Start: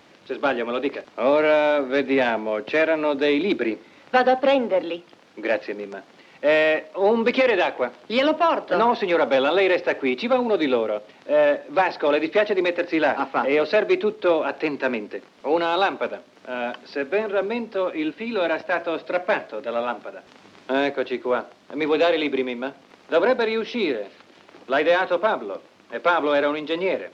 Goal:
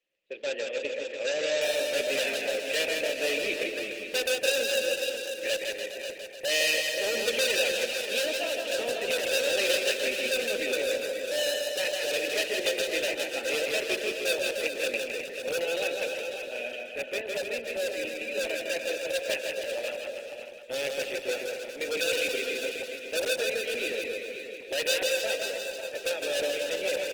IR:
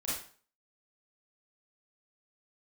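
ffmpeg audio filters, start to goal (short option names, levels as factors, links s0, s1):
-filter_complex "[0:a]asplit=3[s0][s1][s2];[s0]bandpass=f=530:t=q:w=8,volume=1[s3];[s1]bandpass=f=1840:t=q:w=8,volume=0.501[s4];[s2]bandpass=f=2480:t=q:w=8,volume=0.355[s5];[s3][s4][s5]amix=inputs=3:normalize=0,bass=f=250:g=7,treble=f=4000:g=-13,volume=20,asoftclip=hard,volume=0.0501,highshelf=f=2400:g=9,asplit=2[s6][s7];[s7]aecho=0:1:543|1086|1629:0.376|0.0789|0.0166[s8];[s6][s8]amix=inputs=2:normalize=0,aexciter=amount=4.7:drive=4.1:freq=2400,agate=range=0.0708:threshold=0.00891:ratio=16:detection=peak,asplit=2[s9][s10];[s10]aecho=0:1:160|296|411.6|509.9|593.4:0.631|0.398|0.251|0.158|0.1[s11];[s9][s11]amix=inputs=2:normalize=0,volume=0.708" -ar 48000 -c:a libopus -b:a 16k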